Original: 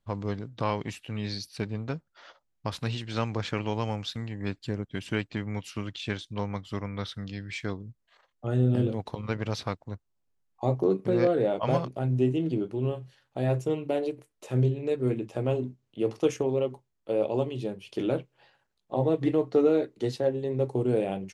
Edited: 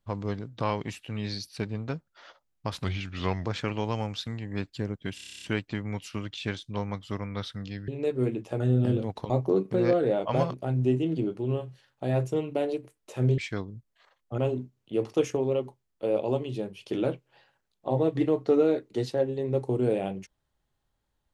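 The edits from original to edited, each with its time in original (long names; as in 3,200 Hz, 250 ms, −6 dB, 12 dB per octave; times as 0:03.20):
0:02.84–0:03.34: play speed 82%
0:05.04: stutter 0.03 s, 10 plays
0:07.50–0:08.50: swap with 0:14.72–0:15.44
0:09.20–0:10.64: remove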